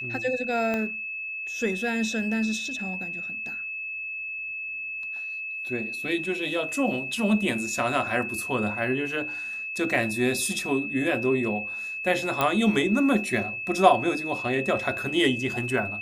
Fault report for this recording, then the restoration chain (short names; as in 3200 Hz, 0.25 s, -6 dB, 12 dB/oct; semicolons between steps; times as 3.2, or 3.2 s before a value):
tone 2600 Hz -31 dBFS
0.74 pop -16 dBFS
12.41 pop -9 dBFS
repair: de-click; notch 2600 Hz, Q 30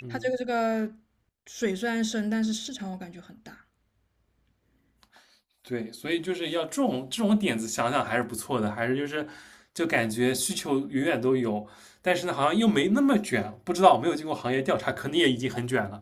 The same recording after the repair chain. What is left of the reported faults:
0.74 pop